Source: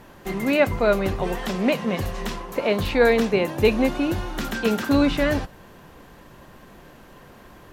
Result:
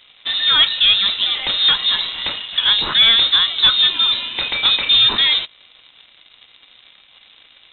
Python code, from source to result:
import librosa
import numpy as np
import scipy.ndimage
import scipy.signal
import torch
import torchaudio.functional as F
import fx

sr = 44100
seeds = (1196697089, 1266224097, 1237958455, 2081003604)

y = scipy.signal.sosfilt(scipy.signal.butter(2, 140.0, 'highpass', fs=sr, output='sos'), x)
y = fx.leveller(y, sr, passes=2)
y = fx.freq_invert(y, sr, carrier_hz=3900)